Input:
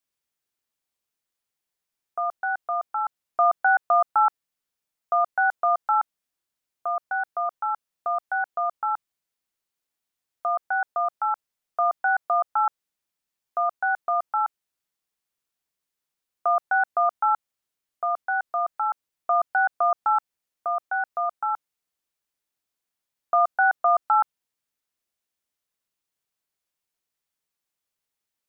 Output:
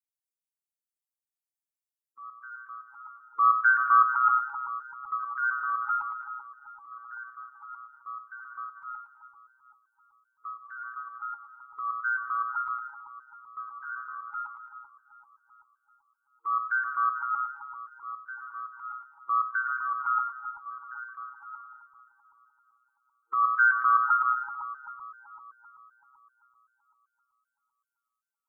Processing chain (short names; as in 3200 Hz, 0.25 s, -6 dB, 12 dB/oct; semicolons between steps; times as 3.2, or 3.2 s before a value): per-bin expansion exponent 3; 13.78–14.32 AM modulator 79 Hz, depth 35%; split-band echo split 1100 Hz, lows 0.386 s, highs 0.108 s, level -5.5 dB; FFT band-reject 400–880 Hz; ring modulator 60 Hz; cascading flanger rising 1.3 Hz; gain +8.5 dB